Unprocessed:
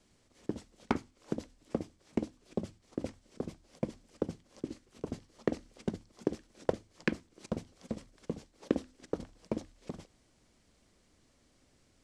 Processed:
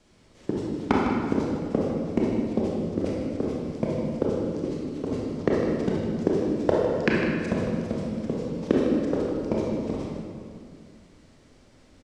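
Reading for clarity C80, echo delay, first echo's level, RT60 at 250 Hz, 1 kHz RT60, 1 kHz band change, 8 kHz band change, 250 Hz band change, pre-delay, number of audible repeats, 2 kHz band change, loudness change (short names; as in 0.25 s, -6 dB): 0.0 dB, 0.154 s, -8.5 dB, 2.7 s, 2.2 s, +12.5 dB, n/a, +13.0 dB, 26 ms, 1, +11.0 dB, +13.0 dB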